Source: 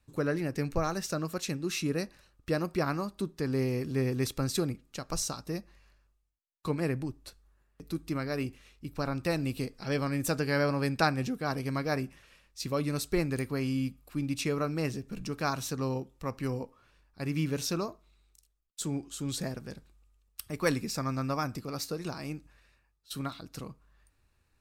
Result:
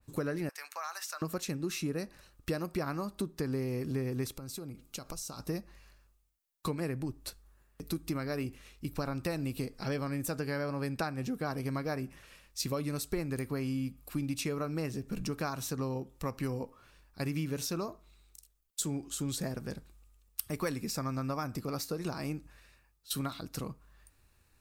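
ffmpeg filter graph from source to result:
-filter_complex "[0:a]asettb=1/sr,asplit=3[a][b][c];[a]atrim=end=0.494[d];[b]atrim=start=0.49:end=1.22,asetpts=PTS-STARTPTS,afade=t=in:d=0.004:c=qsin,afade=t=out:st=0.726:d=0.004:c=qsin,highpass=f=920:w=0.5412,highpass=f=920:w=1.3066,acompressor=threshold=-40dB:ratio=2.5:attack=3.2:release=140:knee=1:detection=peak[e];[c]atrim=start=1.216[f];[d][e]acrossfade=d=0.004:c1=hsin:c2=qsin[g];[g][f]acrossfade=d=0.004:c1=qsin:c2=hsin,asettb=1/sr,asplit=3[h][i][j];[h]atrim=end=4.364[k];[i]atrim=start=4.36:end=5.4,asetpts=PTS-STARTPTS,afade=t=in:d=0.004:c=qsin,afade=t=out:st=1.036:d=0.004:c=qsin,highshelf=f=12k:g=4,bandreject=f=1.8k:w=5.4,acompressor=threshold=-41dB:ratio=16:attack=3.2:release=140:knee=1:detection=peak[l];[j]atrim=start=5.396[m];[k][l]acrossfade=d=0.004:c1=hsin:c2=qsin[n];[n][m]acrossfade=d=0.004:c1=qsin:c2=hsin,highshelf=f=8k:g=9,acompressor=threshold=-34dB:ratio=6,adynamicequalizer=threshold=0.00112:dfrequency=2100:dqfactor=0.7:tfrequency=2100:tqfactor=0.7:attack=5:release=100:ratio=0.375:range=2.5:mode=cutabove:tftype=highshelf,volume=3.5dB"

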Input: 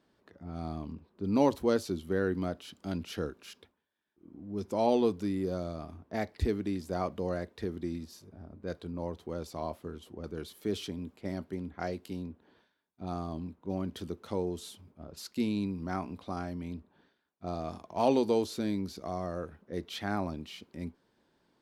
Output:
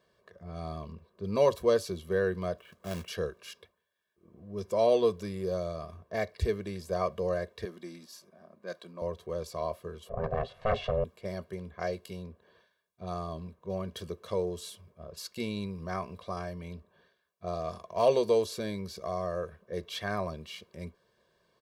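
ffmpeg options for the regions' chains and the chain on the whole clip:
-filter_complex "[0:a]asettb=1/sr,asplit=3[a][b][c];[a]atrim=end=2.584[d];[b]atrim=start=2.58:end=3.08,asetpts=PTS-STARTPTS,afade=t=in:d=0.004:c=qsin,afade=t=out:st=0.496:d=0.004:c=qsin,lowpass=f=2.2k:w=0.5412,lowpass=f=2.2k:w=1.3066,acrusher=bits=3:mode=log:mix=0:aa=0.000001[e];[c]atrim=start=3.076[f];[d][e]acrossfade=d=0.004:c1=hsin:c2=qsin[g];[g][f]acrossfade=d=0.004:c1=qsin:c2=hsin,asettb=1/sr,asplit=3[h][i][j];[h]atrim=end=7.654[k];[i]atrim=start=7.65:end=9.02,asetpts=PTS-STARTPTS,afade=t=in:d=0.004:c=qsin,afade=t=out:st=1.366:d=0.004:c=qsin,highpass=f=210:w=0.5412,highpass=f=210:w=1.3066,equalizer=f=450:w=3.8:g=-11.5[l];[j]atrim=start=9.016[m];[k][l]acrossfade=d=0.004:c1=hsin:c2=qsin[n];[n][m]acrossfade=d=0.004:c1=qsin:c2=hsin,asettb=1/sr,asplit=3[o][p][q];[o]atrim=end=10.094[r];[p]atrim=start=10.09:end=11.04,asetpts=PTS-STARTPTS,afade=t=in:d=0.004:c=qsin,afade=t=out:st=0.946:d=0.004:c=qsin,lowpass=1.7k,aeval=exprs='val(0)*sin(2*PI*320*n/s)':c=same,aeval=exprs='0.0708*sin(PI/2*2.51*val(0)/0.0708)':c=same[s];[q]atrim=start=11.036[t];[r][s]acrossfade=d=0.004:c1=hsin:c2=qsin[u];[u][t]acrossfade=d=0.004:c1=qsin:c2=hsin,lowshelf=f=110:g=-6.5,aecho=1:1:1.8:0.9"

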